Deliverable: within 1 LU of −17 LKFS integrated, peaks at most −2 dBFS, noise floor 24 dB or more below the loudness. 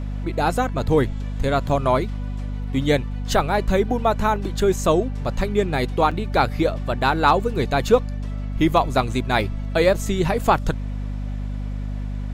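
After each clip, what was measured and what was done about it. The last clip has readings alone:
number of dropouts 2; longest dropout 4.9 ms; mains hum 50 Hz; hum harmonics up to 250 Hz; level of the hum −25 dBFS; integrated loudness −22.0 LKFS; sample peak −3.5 dBFS; target loudness −17.0 LKFS
→ repair the gap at 0:01.69/0:06.11, 4.9 ms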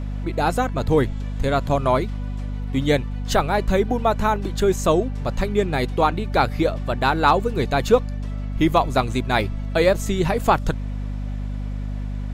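number of dropouts 0; mains hum 50 Hz; hum harmonics up to 250 Hz; level of the hum −25 dBFS
→ mains-hum notches 50/100/150/200/250 Hz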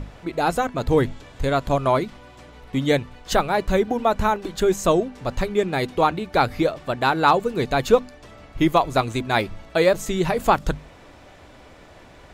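mains hum none found; integrated loudness −22.0 LKFS; sample peak −4.0 dBFS; target loudness −17.0 LKFS
→ level +5 dB
brickwall limiter −2 dBFS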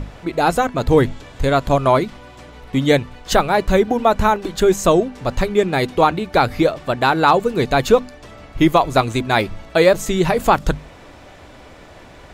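integrated loudness −17.5 LKFS; sample peak −2.0 dBFS; background noise floor −42 dBFS

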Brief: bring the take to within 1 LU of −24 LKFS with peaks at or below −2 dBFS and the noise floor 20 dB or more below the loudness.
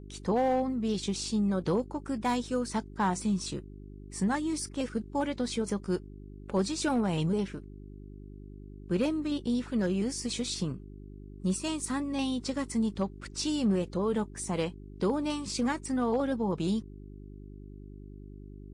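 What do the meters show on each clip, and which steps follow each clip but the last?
share of clipped samples 0.3%; peaks flattened at −20.5 dBFS; mains hum 50 Hz; hum harmonics up to 400 Hz; level of the hum −45 dBFS; integrated loudness −31.0 LKFS; sample peak −20.5 dBFS; target loudness −24.0 LKFS
→ clipped peaks rebuilt −20.5 dBFS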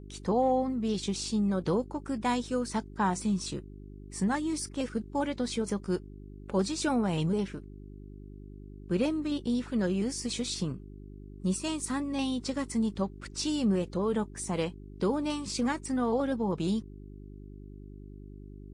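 share of clipped samples 0.0%; mains hum 50 Hz; hum harmonics up to 400 Hz; level of the hum −44 dBFS
→ hum removal 50 Hz, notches 8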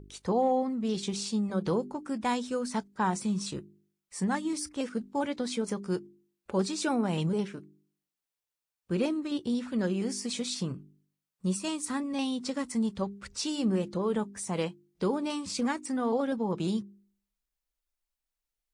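mains hum none found; integrated loudness −31.5 LKFS; sample peak −17.0 dBFS; target loudness −24.0 LKFS
→ level +7.5 dB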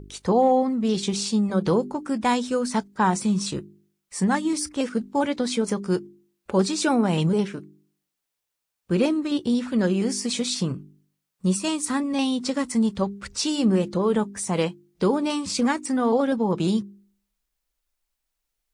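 integrated loudness −24.0 LKFS; sample peak −9.5 dBFS; background noise floor −82 dBFS

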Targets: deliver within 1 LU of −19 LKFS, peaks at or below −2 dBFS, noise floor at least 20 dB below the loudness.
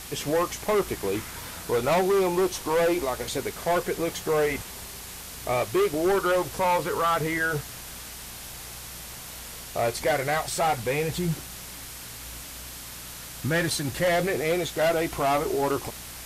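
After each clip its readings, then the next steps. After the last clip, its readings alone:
mains hum 60 Hz; hum harmonics up to 240 Hz; level of the hum −48 dBFS; background noise floor −40 dBFS; target noise floor −46 dBFS; integrated loudness −26.0 LKFS; sample peak −16.0 dBFS; target loudness −19.0 LKFS
→ hum removal 60 Hz, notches 4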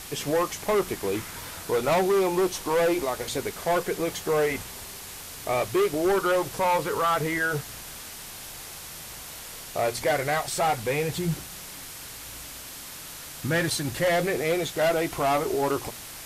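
mains hum none found; background noise floor −41 dBFS; target noise floor −46 dBFS
→ broadband denoise 6 dB, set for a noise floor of −41 dBFS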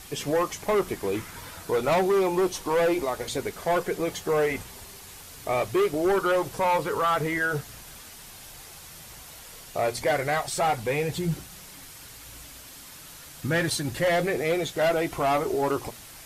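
background noise floor −45 dBFS; target noise floor −46 dBFS
→ broadband denoise 6 dB, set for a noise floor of −45 dBFS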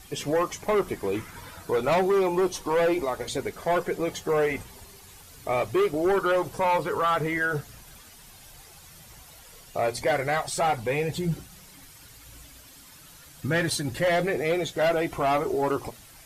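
background noise floor −50 dBFS; integrated loudness −26.0 LKFS; sample peak −16.5 dBFS; target loudness −19.0 LKFS
→ level +7 dB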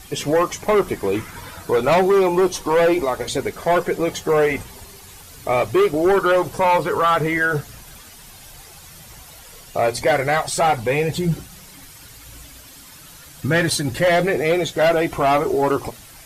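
integrated loudness −19.0 LKFS; sample peak −9.5 dBFS; background noise floor −43 dBFS

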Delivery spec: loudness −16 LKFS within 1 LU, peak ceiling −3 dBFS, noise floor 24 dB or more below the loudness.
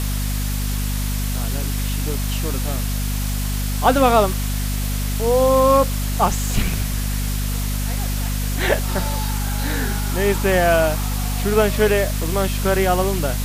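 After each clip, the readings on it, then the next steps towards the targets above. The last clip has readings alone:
mains hum 50 Hz; hum harmonics up to 250 Hz; level of the hum −20 dBFS; background noise floor −22 dBFS; target noise floor −45 dBFS; integrated loudness −20.5 LKFS; sample peak −2.5 dBFS; target loudness −16.0 LKFS
→ hum removal 50 Hz, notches 5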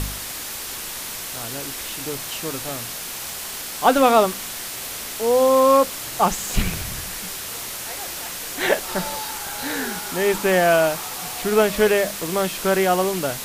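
mains hum none found; background noise floor −32 dBFS; target noise floor −46 dBFS
→ noise reduction from a noise print 14 dB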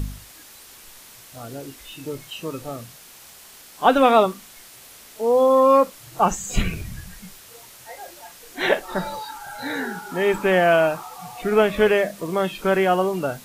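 background noise floor −46 dBFS; integrated loudness −20.5 LKFS; sample peak −3.0 dBFS; target loudness −16.0 LKFS
→ level +4.5 dB
brickwall limiter −3 dBFS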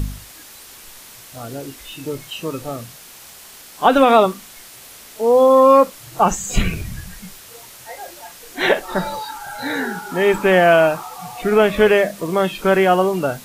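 integrated loudness −16.5 LKFS; sample peak −3.0 dBFS; background noise floor −41 dBFS

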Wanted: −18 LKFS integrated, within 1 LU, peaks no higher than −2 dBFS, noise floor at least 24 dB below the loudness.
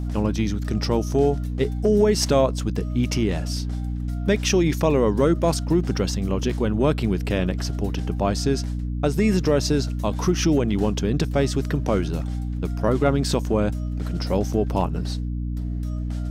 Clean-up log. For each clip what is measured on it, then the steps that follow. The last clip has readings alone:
mains hum 60 Hz; hum harmonics up to 300 Hz; level of the hum −24 dBFS; integrated loudness −23.0 LKFS; sample peak −5.0 dBFS; target loudness −18.0 LKFS
→ hum removal 60 Hz, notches 5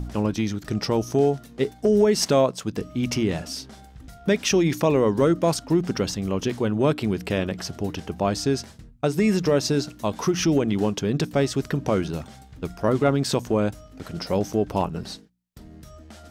mains hum none found; integrated loudness −23.5 LKFS; sample peak −6.0 dBFS; target loudness −18.0 LKFS
→ level +5.5 dB
brickwall limiter −2 dBFS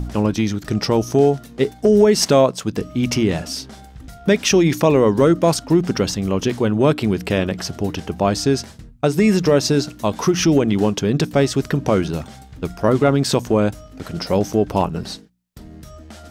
integrated loudness −18.0 LKFS; sample peak −2.0 dBFS; background noise floor −42 dBFS

